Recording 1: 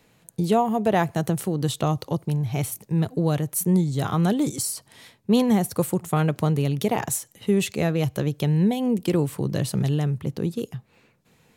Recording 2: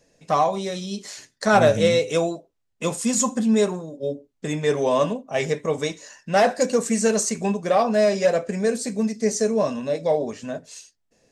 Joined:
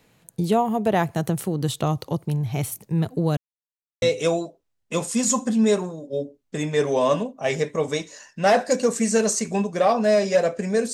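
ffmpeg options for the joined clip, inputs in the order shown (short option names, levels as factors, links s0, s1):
-filter_complex "[0:a]apad=whole_dur=10.93,atrim=end=10.93,asplit=2[s0][s1];[s0]atrim=end=3.37,asetpts=PTS-STARTPTS,afade=t=out:st=3.366:d=0.004:c=hsin[s2];[s1]atrim=start=3.37:end=4.02,asetpts=PTS-STARTPTS,volume=0[s3];[1:a]atrim=start=1.92:end=8.83,asetpts=PTS-STARTPTS,afade=t=in:d=0.004:c=hsin[s4];[s2][s3][s4]concat=n=3:v=0:a=1"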